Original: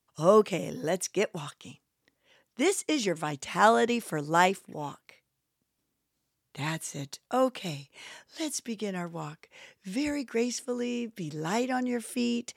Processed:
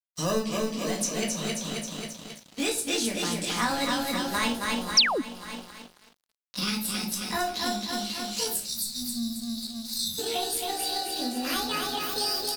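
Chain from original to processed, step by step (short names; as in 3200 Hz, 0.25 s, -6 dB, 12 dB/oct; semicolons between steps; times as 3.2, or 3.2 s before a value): gliding pitch shift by +9.5 st starting unshifted; small resonant body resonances 220/3900 Hz, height 8 dB, ringing for 65 ms; in parallel at -12 dB: sample-and-hold 40×; on the sum: feedback echo 0.268 s, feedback 51%, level -4.5 dB; spectral delete 8.65–10.19, 240–3500 Hz; shoebox room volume 270 m³, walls furnished, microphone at 1.9 m; painted sound fall, 4.97–5.22, 220–6200 Hz -15 dBFS; high shelf 2200 Hz +11 dB; crossover distortion -45 dBFS; compressor 2.5:1, threshold -33 dBFS, peak gain reduction 17.5 dB; bell 4700 Hz +7.5 dB 0.72 oct; gain +1.5 dB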